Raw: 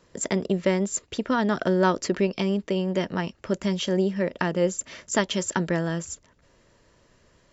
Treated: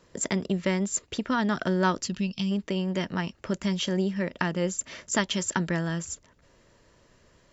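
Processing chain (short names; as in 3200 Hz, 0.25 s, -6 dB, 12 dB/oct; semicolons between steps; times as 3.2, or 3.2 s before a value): dynamic EQ 490 Hz, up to -7 dB, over -36 dBFS, Q 1; spectral gain 2.04–2.51, 250–2500 Hz -12 dB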